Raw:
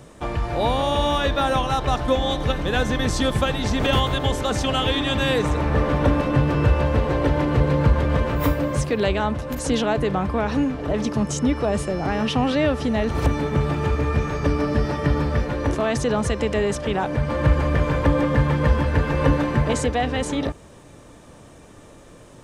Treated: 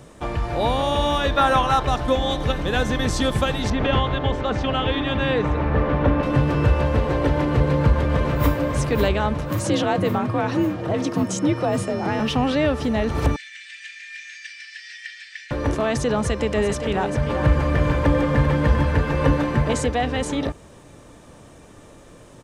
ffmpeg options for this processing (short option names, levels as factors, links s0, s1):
-filter_complex "[0:a]asettb=1/sr,asplit=3[s0][s1][s2];[s0]atrim=end=1.374[s3];[s1]atrim=start=1.37:end=1.83,asetpts=PTS-STARTPTS,afade=t=in:d=0.004:c=qsin,afade=t=out:st=0.456:d=0.004:c=qsin,equalizer=f=1300:t=o:w=1.5:g=6.5[s4];[s2]atrim=start=1.826[s5];[s3][s4]acrossfade=d=0.004:c1=hsin:c2=qsin[s6];[s6][s5]acrossfade=d=0.004:c1=qsin:c2=hsin,asettb=1/sr,asplit=3[s7][s8][s9];[s7]atrim=end=3.704[s10];[s8]atrim=start=3.7:end=6.23,asetpts=PTS-STARTPTS,afade=t=in:d=0.004:c=qsin,afade=t=out:st=2.526:d=0.004:c=qsin,lowpass=2900[s11];[s9]atrim=start=6.226[s12];[s10][s11]acrossfade=d=0.004:c1=hsin:c2=qsin[s13];[s13][s12]acrossfade=d=0.004:c1=qsin:c2=hsin,asplit=2[s14][s15];[s15]afade=t=in:st=7.65:d=0.01,afade=t=out:st=8.53:d=0.01,aecho=0:1:550|1100|1650|2200|2750|3300|3850|4400|4950|5500|6050:0.446684|0.312679|0.218875|0.153212|0.107249|0.0750741|0.0525519|0.0367863|0.0257504|0.0180253|0.0126177[s16];[s14][s16]amix=inputs=2:normalize=0,asettb=1/sr,asplit=3[s17][s18][s19];[s17]atrim=end=9.514[s20];[s18]atrim=start=9.51:end=12.2,asetpts=PTS-STARTPTS,afade=t=in:d=0.004:c=qsin,afade=t=out:st=2.686:d=0.004:c=qsin,afreqshift=46[s21];[s19]atrim=start=12.196[s22];[s20][s21]acrossfade=d=0.004:c1=hsin:c2=qsin[s23];[s23][s22]acrossfade=d=0.004:c1=qsin:c2=hsin,asettb=1/sr,asplit=3[s24][s25][s26];[s24]atrim=end=13.364[s27];[s25]atrim=start=13.36:end=15.51,asetpts=PTS-STARTPTS,afade=t=in:d=0.004:c=qsin,afade=t=out:st=2.146:d=0.004:c=qsin,asuperpass=centerf=4100:order=20:qfactor=0.57[s28];[s26]atrim=start=15.506[s29];[s27][s28]acrossfade=d=0.004:c1=hsin:c2=qsin[s30];[s30][s29]acrossfade=d=0.004:c1=qsin:c2=hsin,asettb=1/sr,asplit=3[s31][s32][s33];[s31]atrim=end=16.184[s34];[s32]atrim=start=16.18:end=18.95,asetpts=PTS-STARTPTS,afade=t=in:d=0.004:c=qsin,afade=t=out:st=2.766:d=0.004:c=qsin,aecho=1:1:393:0.355,atrim=end_sample=122157[s35];[s33]atrim=start=18.946[s36];[s34][s35]acrossfade=d=0.004:c1=hsin:c2=qsin[s37];[s37][s36]acrossfade=d=0.004:c1=qsin:c2=hsin"